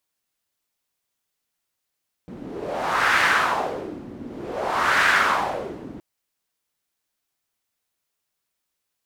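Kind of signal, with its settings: wind-like swept noise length 3.72 s, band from 250 Hz, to 1600 Hz, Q 2.6, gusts 2, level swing 19 dB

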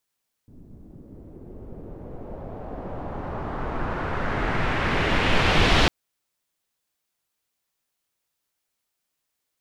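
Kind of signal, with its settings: swept filtered noise pink, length 5.40 s lowpass, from 230 Hz, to 3600 Hz, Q 1.4, exponential, gain ramp +27 dB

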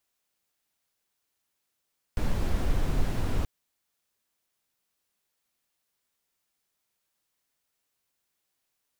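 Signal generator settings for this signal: noise brown, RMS -24.5 dBFS 1.28 s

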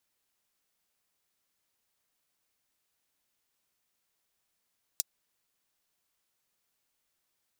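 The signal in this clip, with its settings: closed hi-hat, high-pass 5200 Hz, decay 0.03 s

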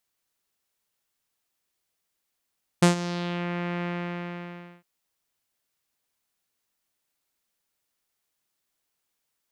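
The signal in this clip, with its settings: synth note saw F3 12 dB/oct, low-pass 2300 Hz, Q 1.9, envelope 2 oct, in 0.64 s, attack 8.7 ms, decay 0.12 s, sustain -15.5 dB, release 0.99 s, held 1.02 s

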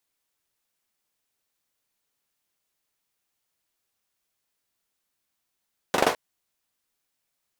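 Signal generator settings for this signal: hand clap length 0.21 s, apart 42 ms, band 590 Hz, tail 0.26 s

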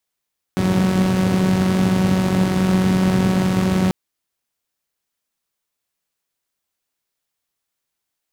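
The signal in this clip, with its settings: four-cylinder engine model, steady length 3.34 s, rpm 5600, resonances 120/180 Hz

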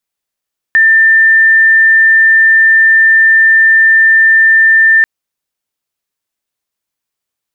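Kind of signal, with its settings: tone sine 1790 Hz -3.5 dBFS 4.29 s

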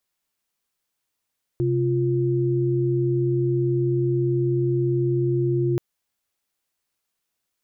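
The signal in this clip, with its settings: chord C3/F4 sine, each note -21.5 dBFS 4.18 s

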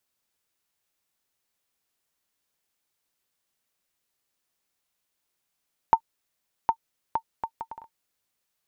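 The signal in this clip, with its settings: bouncing ball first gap 0.76 s, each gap 0.61, 906 Hz, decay 74 ms -6 dBFS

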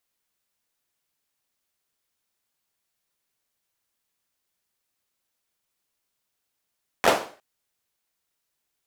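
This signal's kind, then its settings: hand clap length 0.36 s, apart 12 ms, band 600 Hz, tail 0.41 s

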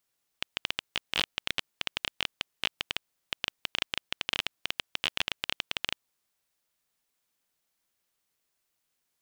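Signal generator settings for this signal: random clicks 14/s -9.5 dBFS 5.72 s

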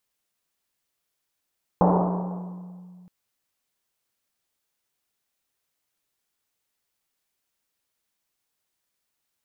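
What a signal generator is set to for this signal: Risset drum length 1.27 s, pitch 180 Hz, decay 2.74 s, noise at 670 Hz, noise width 720 Hz, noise 45%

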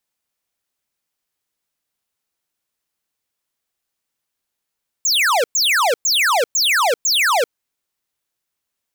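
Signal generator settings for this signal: burst of laser zaps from 7600 Hz, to 440 Hz, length 0.39 s square, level -15.5 dB, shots 5, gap 0.11 s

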